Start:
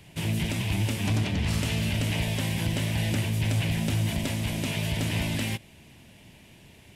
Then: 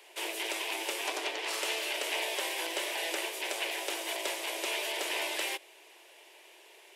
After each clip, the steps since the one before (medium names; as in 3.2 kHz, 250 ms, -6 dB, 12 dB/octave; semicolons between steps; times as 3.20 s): steep high-pass 350 Hz 72 dB/octave; peaking EQ 980 Hz +3 dB 0.56 oct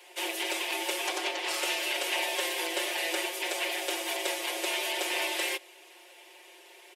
comb 5.6 ms, depth 99%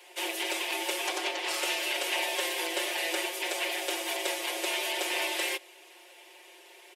no audible change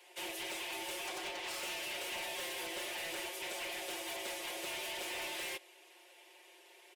overload inside the chain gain 31 dB; trim -7 dB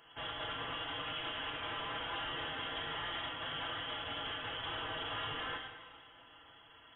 plate-style reverb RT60 1.6 s, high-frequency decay 0.95×, DRR 2.5 dB; frequency inversion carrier 3.7 kHz